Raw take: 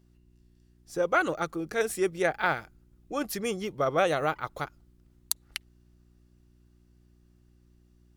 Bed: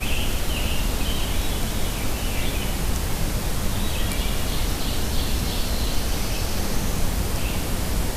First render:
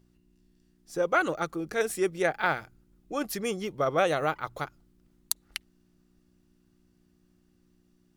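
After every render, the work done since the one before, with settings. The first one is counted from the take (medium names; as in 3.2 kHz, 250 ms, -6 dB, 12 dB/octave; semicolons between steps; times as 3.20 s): de-hum 60 Hz, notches 2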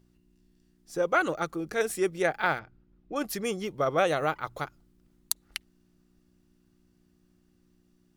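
2.59–3.16 s: distance through air 240 m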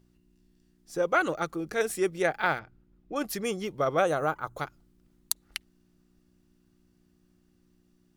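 4.01–4.58 s: time-frequency box 1.7–5.9 kHz -8 dB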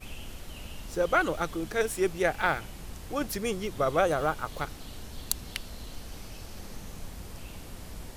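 add bed -18 dB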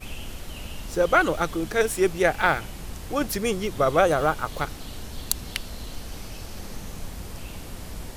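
trim +5.5 dB; peak limiter -3 dBFS, peak gain reduction 1.5 dB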